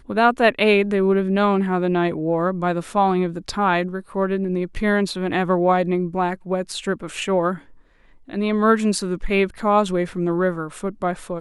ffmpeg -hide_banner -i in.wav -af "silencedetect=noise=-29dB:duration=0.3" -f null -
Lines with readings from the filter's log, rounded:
silence_start: 7.56
silence_end: 8.30 | silence_duration: 0.73